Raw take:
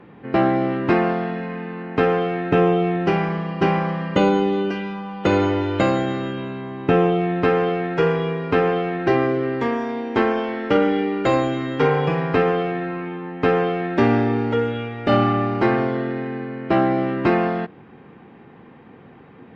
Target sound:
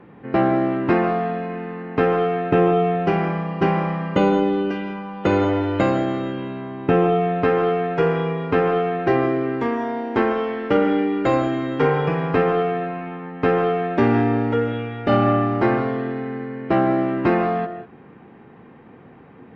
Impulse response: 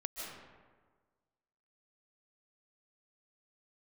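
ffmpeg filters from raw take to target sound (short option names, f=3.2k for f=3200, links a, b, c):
-filter_complex "[0:a]asplit=2[a][b];[1:a]atrim=start_sample=2205,afade=t=out:st=0.25:d=0.01,atrim=end_sample=11466,lowpass=2.9k[c];[b][c]afir=irnorm=-1:irlink=0,volume=-1dB[d];[a][d]amix=inputs=2:normalize=0,volume=-4.5dB"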